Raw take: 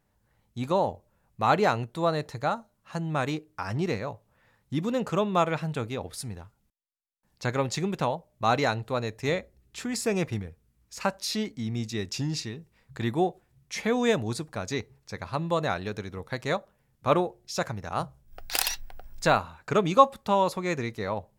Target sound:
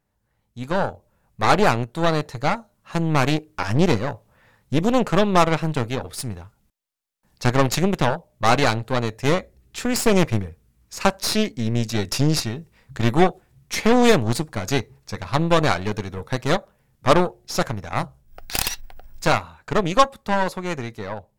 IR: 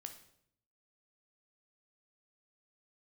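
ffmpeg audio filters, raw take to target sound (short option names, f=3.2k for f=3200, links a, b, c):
-af "dynaudnorm=f=540:g=3:m=11.5dB,aeval=exprs='0.944*(cos(1*acos(clip(val(0)/0.944,-1,1)))-cos(1*PI/2))+0.15*(cos(8*acos(clip(val(0)/0.944,-1,1)))-cos(8*PI/2))':c=same,volume=-2.5dB"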